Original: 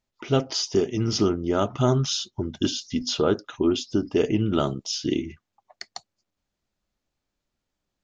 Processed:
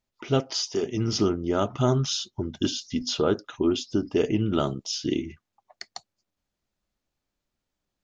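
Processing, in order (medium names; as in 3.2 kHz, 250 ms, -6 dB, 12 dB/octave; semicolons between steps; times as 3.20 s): 0.40–0.83 s: bass shelf 280 Hz -11.5 dB; trim -1.5 dB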